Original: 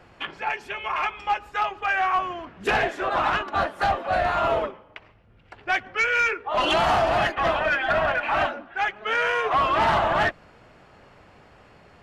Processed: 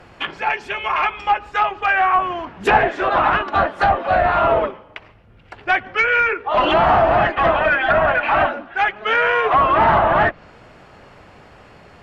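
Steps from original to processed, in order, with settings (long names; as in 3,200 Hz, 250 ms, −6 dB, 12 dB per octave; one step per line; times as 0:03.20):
treble cut that deepens with the level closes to 1,900 Hz, closed at −18 dBFS
0:02.32–0:02.78: parametric band 880 Hz +7 dB 0.32 octaves
level +7 dB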